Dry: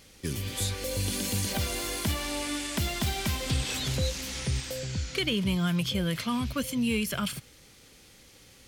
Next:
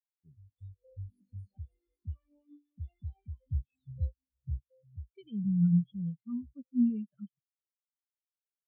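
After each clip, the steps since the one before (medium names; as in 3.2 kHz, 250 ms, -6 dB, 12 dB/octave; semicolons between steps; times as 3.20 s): spectral contrast expander 4:1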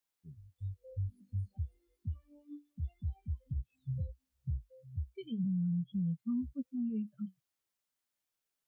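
compression, threshold -31 dBFS, peak gain reduction 10 dB; peak limiter -37.5 dBFS, peak gain reduction 10.5 dB; flange 0.32 Hz, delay 3.5 ms, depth 6.6 ms, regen -65%; trim +12 dB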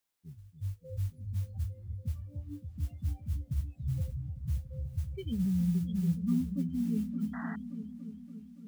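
modulation noise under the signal 27 dB; delay with an opening low-pass 285 ms, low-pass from 200 Hz, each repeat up 1 oct, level -6 dB; painted sound noise, 7.33–7.56 s, 630–2000 Hz -48 dBFS; trim +3.5 dB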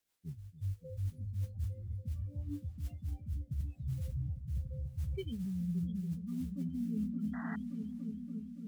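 reverse; compression 12:1, threshold -37 dBFS, peak gain reduction 13.5 dB; reverse; rotary cabinet horn 6 Hz, later 0.8 Hz, at 1.34 s; trim +4.5 dB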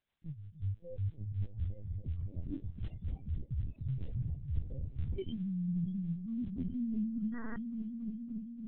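LPC vocoder at 8 kHz pitch kept; trim +1 dB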